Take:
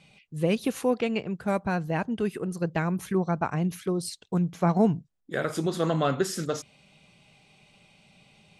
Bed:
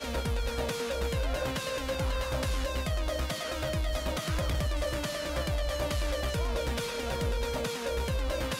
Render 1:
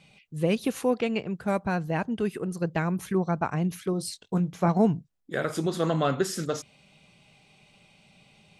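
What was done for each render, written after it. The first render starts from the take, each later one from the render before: 3.91–4.68 doubler 21 ms -10 dB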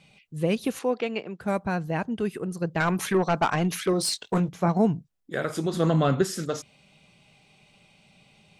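0.79–1.41 BPF 270–6200 Hz; 2.8–4.49 overdrive pedal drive 19 dB, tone 6100 Hz, clips at -12 dBFS; 5.73–6.25 low shelf 250 Hz +8.5 dB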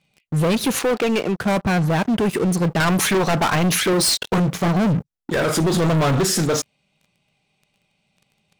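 sample leveller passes 5; limiter -15 dBFS, peak gain reduction 5 dB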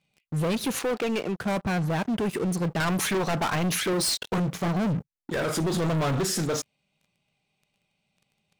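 gain -7.5 dB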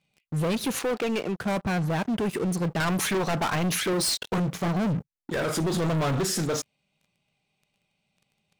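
nothing audible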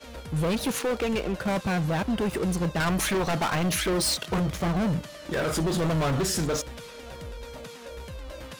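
add bed -8.5 dB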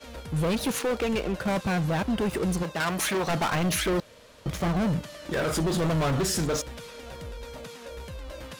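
2.62–3.28 HPF 450 Hz -> 180 Hz 6 dB/oct; 4–4.46 room tone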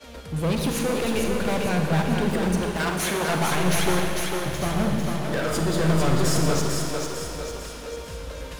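split-band echo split 300 Hz, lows 0.132 s, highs 0.449 s, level -4 dB; Schroeder reverb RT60 2.2 s, DRR 3.5 dB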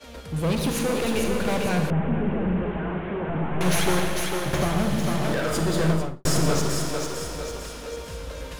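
1.9–3.61 delta modulation 16 kbps, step -40 dBFS; 4.53–5.33 three-band squash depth 100%; 5.83–6.25 studio fade out

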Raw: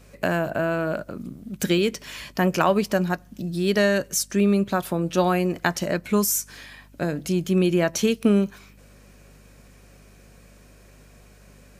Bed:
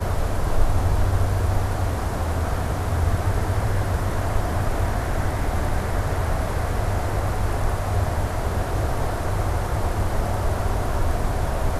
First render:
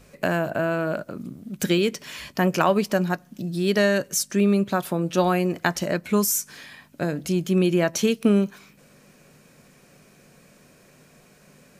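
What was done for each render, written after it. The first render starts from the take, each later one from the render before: de-hum 50 Hz, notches 2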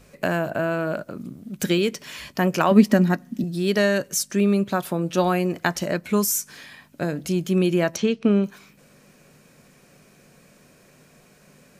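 2.71–3.44 small resonant body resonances 240/1900 Hz, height 14 dB, ringing for 40 ms; 7.96–8.44 air absorption 140 m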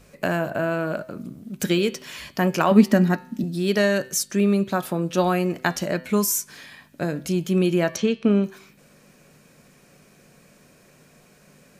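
de-hum 127.9 Hz, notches 38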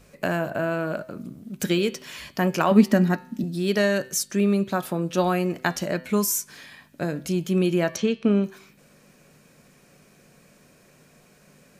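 gain -1.5 dB

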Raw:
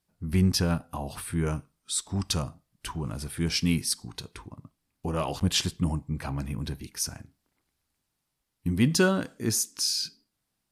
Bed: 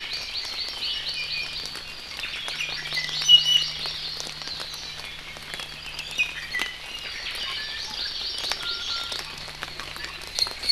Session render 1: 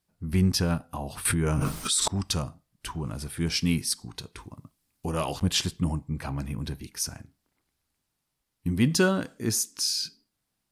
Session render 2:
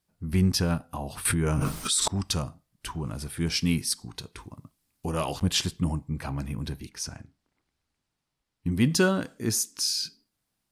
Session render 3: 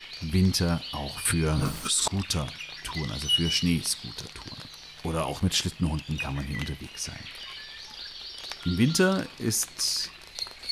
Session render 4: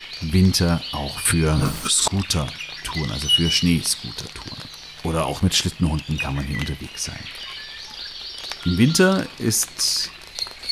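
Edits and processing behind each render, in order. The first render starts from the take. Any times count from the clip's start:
1.25–2.08 fast leveller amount 100%; 4.38–5.34 high shelf 4000 Hz +8.5 dB
6.89–8.72 air absorption 53 m
add bed -10 dB
gain +6.5 dB

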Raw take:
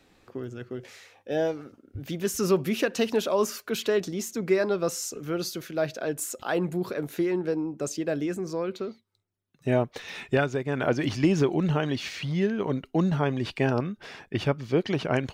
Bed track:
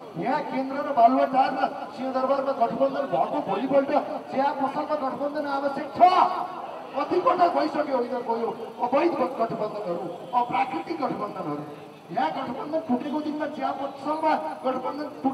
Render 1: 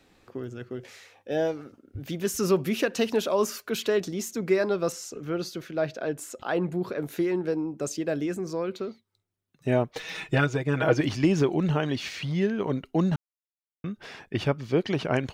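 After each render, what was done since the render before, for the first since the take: 4.92–7.01 LPF 3500 Hz 6 dB/oct; 9.95–11.01 comb 6.3 ms, depth 95%; 13.16–13.84 mute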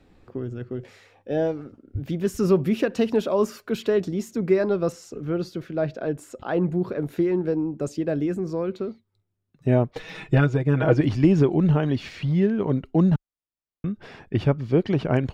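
tilt -2.5 dB/oct; notch 6200 Hz, Q 18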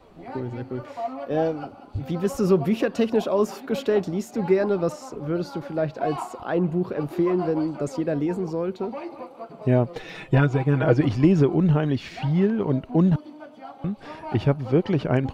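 add bed track -13 dB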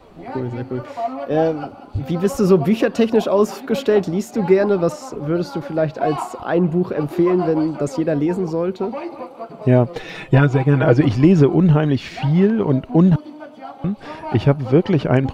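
gain +6 dB; limiter -2 dBFS, peak gain reduction 1.5 dB

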